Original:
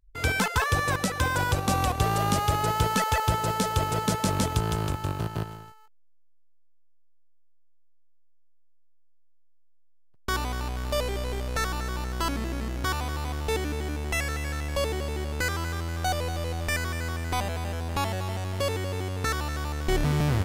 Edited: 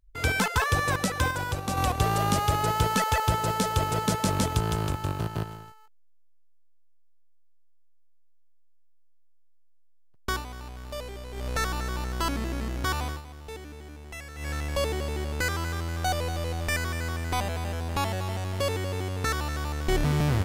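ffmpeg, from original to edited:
ffmpeg -i in.wav -filter_complex "[0:a]asplit=7[link_01][link_02][link_03][link_04][link_05][link_06][link_07];[link_01]atrim=end=1.312[link_08];[link_02]atrim=start=1.308:end=1.772,asetpts=PTS-STARTPTS,volume=-5dB[link_09];[link_03]atrim=start=1.768:end=10.44,asetpts=PTS-STARTPTS,afade=type=out:start_time=8.522:duration=0.15:silence=0.354813[link_10];[link_04]atrim=start=10.44:end=11.32,asetpts=PTS-STARTPTS,volume=-9dB[link_11];[link_05]atrim=start=11.32:end=13.22,asetpts=PTS-STARTPTS,afade=type=in:duration=0.15:silence=0.354813,afade=type=out:start_time=1.69:duration=0.21:curve=qsin:silence=0.237137[link_12];[link_06]atrim=start=13.22:end=14.35,asetpts=PTS-STARTPTS,volume=-12.5dB[link_13];[link_07]atrim=start=14.35,asetpts=PTS-STARTPTS,afade=type=in:duration=0.21:curve=qsin:silence=0.237137[link_14];[link_08][link_09]acrossfade=duration=0.004:curve1=hsin:curve2=hsin[link_15];[link_10][link_11][link_12][link_13][link_14]concat=n=5:v=0:a=1[link_16];[link_15][link_16]acrossfade=duration=0.004:curve1=hsin:curve2=hsin" out.wav

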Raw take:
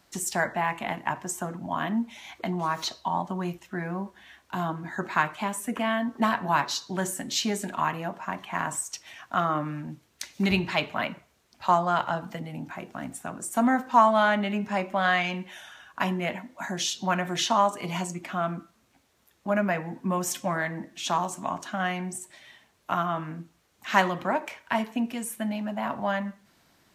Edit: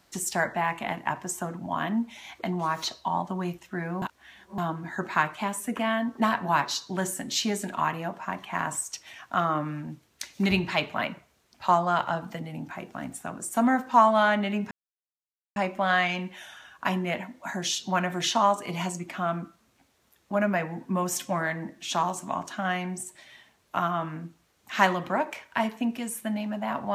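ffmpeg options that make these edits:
ffmpeg -i in.wav -filter_complex "[0:a]asplit=4[link_01][link_02][link_03][link_04];[link_01]atrim=end=4.022[link_05];[link_02]atrim=start=4.018:end=4.582,asetpts=PTS-STARTPTS,areverse[link_06];[link_03]atrim=start=4.578:end=14.71,asetpts=PTS-STARTPTS,afade=type=out:start_time=10.128:duration=0.004:curve=hsin,apad=pad_dur=0.85[link_07];[link_04]atrim=start=14.71,asetpts=PTS-STARTPTS,afade=type=in:duration=0.004:curve=hsin[link_08];[link_05][link_06]acrossfade=duration=0.004:curve1=hsin:curve2=hsin[link_09];[link_07][link_08]concat=n=2:v=0:a=1[link_10];[link_09][link_10]acrossfade=duration=0.004:curve1=hsin:curve2=hsin" out.wav

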